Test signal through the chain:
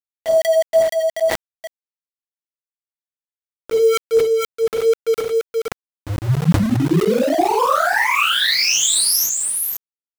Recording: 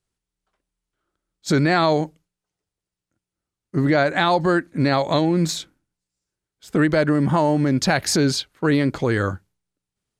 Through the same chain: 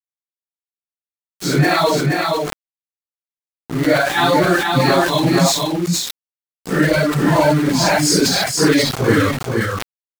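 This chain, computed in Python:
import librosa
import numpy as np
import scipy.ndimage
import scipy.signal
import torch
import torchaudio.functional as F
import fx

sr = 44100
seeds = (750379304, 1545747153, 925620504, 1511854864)

p1 = fx.phase_scramble(x, sr, seeds[0], window_ms=200)
p2 = fx.dereverb_blind(p1, sr, rt60_s=1.2)
p3 = fx.high_shelf(p2, sr, hz=2400.0, db=5.0)
p4 = fx.rider(p3, sr, range_db=10, speed_s=0.5)
p5 = p3 + (p4 * 10.0 ** (2.0 / 20.0))
p6 = np.where(np.abs(p5) >= 10.0 ** (-21.5 / 20.0), p5, 0.0)
p7 = p6 + fx.echo_single(p6, sr, ms=475, db=-3.5, dry=0)
p8 = fx.sustainer(p7, sr, db_per_s=70.0)
y = p8 * 10.0 ** (-3.0 / 20.0)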